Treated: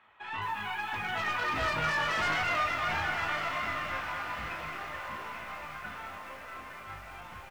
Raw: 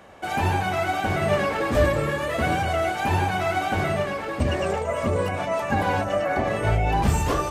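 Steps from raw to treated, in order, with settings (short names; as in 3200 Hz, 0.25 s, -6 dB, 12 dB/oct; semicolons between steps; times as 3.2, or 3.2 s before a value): tracing distortion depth 0.089 ms; Doppler pass-by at 2.08, 38 m/s, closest 17 m; band shelf 1800 Hz +15 dB 2.3 oct; doubler 33 ms -7 dB; reverb removal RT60 0.98 s; hard clip -18.5 dBFS, distortion -9 dB; air absorption 62 m; resonator 53 Hz, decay 0.24 s, harmonics all, mix 80%; diffused feedback echo 1.135 s, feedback 50%, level -7.5 dB; lo-fi delay 0.218 s, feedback 35%, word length 8-bit, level -6 dB; gain -5 dB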